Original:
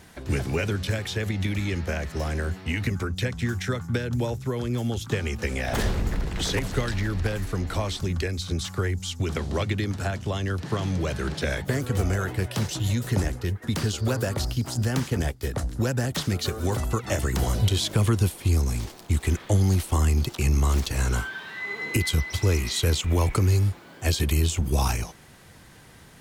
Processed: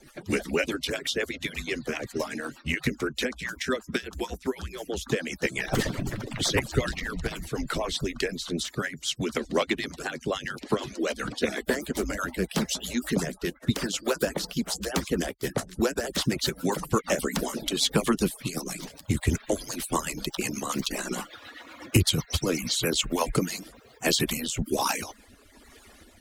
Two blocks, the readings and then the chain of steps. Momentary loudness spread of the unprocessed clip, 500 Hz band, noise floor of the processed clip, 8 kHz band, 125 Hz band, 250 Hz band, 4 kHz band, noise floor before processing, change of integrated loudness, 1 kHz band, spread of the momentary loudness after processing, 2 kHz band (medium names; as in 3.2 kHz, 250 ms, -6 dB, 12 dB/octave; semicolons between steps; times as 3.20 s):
6 LU, +1.0 dB, -54 dBFS, +1.5 dB, -10.0 dB, 0.0 dB, +2.0 dB, -49 dBFS, -2.5 dB, +0.5 dB, 8 LU, +0.5 dB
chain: harmonic-percussive separation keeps percussive; rotary cabinet horn 8 Hz, later 1.2 Hz, at 22.70 s; trim +5 dB